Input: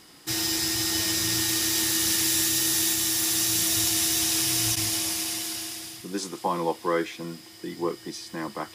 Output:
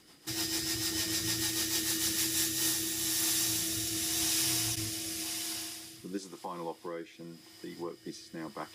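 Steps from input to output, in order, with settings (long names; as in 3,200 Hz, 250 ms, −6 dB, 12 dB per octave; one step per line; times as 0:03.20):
0:06.17–0:08.06: downward compressor 2 to 1, threshold −36 dBFS, peak gain reduction 9 dB
rotating-speaker cabinet horn 6.7 Hz, later 0.9 Hz, at 0:02.05
level −4.5 dB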